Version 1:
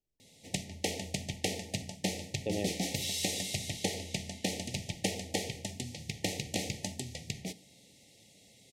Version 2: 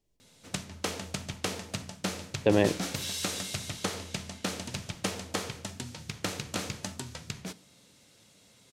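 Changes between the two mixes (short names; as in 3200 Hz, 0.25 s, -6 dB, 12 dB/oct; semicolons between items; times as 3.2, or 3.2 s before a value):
speech +12.0 dB; master: remove brick-wall FIR band-stop 880–1800 Hz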